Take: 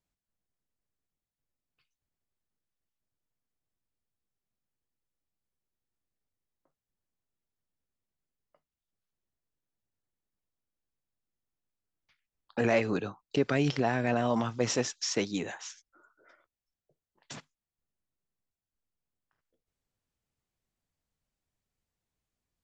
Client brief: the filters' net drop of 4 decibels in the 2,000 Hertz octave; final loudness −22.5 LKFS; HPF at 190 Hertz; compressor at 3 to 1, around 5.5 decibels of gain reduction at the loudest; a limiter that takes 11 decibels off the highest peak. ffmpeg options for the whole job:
ffmpeg -i in.wav -af "highpass=190,equalizer=frequency=2000:width_type=o:gain=-5,acompressor=threshold=-30dB:ratio=3,volume=18.5dB,alimiter=limit=-12dB:level=0:latency=1" out.wav

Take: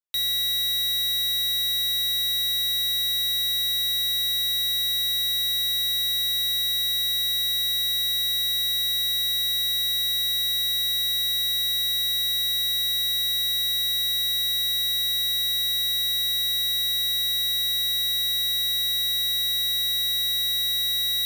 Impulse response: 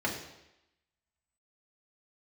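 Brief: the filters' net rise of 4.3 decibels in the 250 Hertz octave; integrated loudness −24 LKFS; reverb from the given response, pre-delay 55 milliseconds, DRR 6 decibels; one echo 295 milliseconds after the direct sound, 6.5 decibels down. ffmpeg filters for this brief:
-filter_complex "[0:a]equalizer=frequency=250:width_type=o:gain=7,aecho=1:1:295:0.473,asplit=2[link_01][link_02];[1:a]atrim=start_sample=2205,adelay=55[link_03];[link_02][link_03]afir=irnorm=-1:irlink=0,volume=-14dB[link_04];[link_01][link_04]amix=inputs=2:normalize=0,volume=-5dB"

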